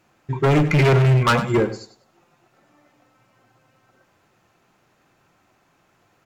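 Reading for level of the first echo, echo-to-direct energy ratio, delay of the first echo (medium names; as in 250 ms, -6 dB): -13.5 dB, -13.5 dB, 98 ms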